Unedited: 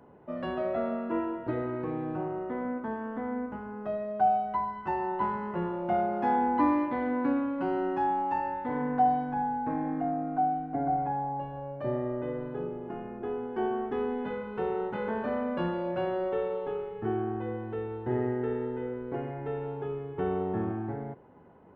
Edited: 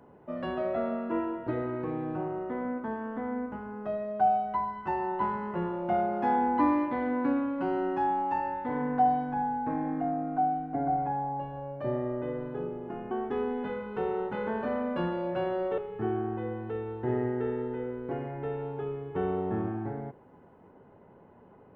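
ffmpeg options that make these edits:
ffmpeg -i in.wav -filter_complex "[0:a]asplit=3[link_01][link_02][link_03];[link_01]atrim=end=13.112[link_04];[link_02]atrim=start=13.718:end=16.392[link_05];[link_03]atrim=start=16.808[link_06];[link_04][link_05]acrossfade=duration=0.004:curve1=hsin:curve2=hsin[link_07];[link_07][link_06]acrossfade=duration=0.004:curve1=hsin:curve2=hsin" out.wav

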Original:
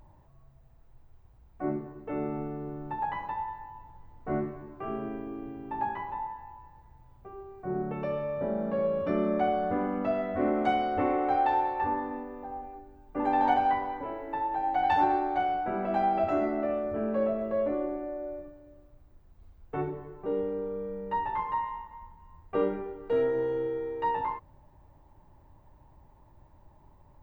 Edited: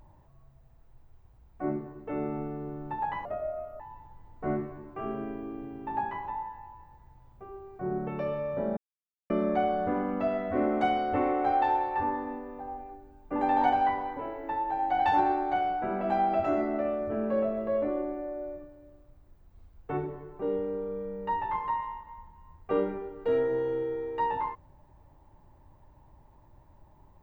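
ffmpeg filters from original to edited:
ffmpeg -i in.wav -filter_complex "[0:a]asplit=5[link_01][link_02][link_03][link_04][link_05];[link_01]atrim=end=3.254[link_06];[link_02]atrim=start=3.25:end=3.64,asetpts=PTS-STARTPTS,asetrate=31311,aresample=44100[link_07];[link_03]atrim=start=3.636:end=8.61,asetpts=PTS-STARTPTS,afade=type=out:start_time=4.97:duration=0.004:curve=hsin[link_08];[link_04]atrim=start=8.61:end=9.14,asetpts=PTS-STARTPTS,volume=0[link_09];[link_05]atrim=start=9.14,asetpts=PTS-STARTPTS,afade=type=in:duration=0.004:curve=hsin[link_10];[link_06][link_07]acrossfade=duration=0.004:curve1=hsin:curve2=hsin[link_11];[link_08][link_09][link_10]concat=n=3:v=0:a=1[link_12];[link_11][link_12]acrossfade=duration=0.004:curve1=hsin:curve2=hsin" out.wav

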